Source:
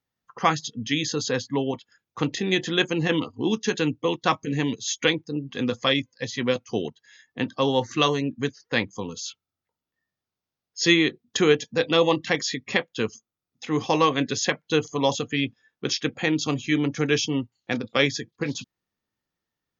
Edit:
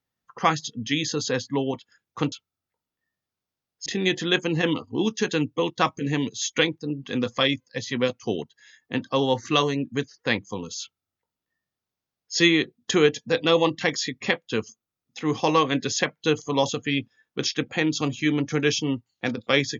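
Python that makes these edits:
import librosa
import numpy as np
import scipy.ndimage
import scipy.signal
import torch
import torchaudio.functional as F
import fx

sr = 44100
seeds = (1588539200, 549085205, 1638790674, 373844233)

y = fx.edit(x, sr, fx.duplicate(start_s=9.27, length_s=1.54, to_s=2.32), tone=tone)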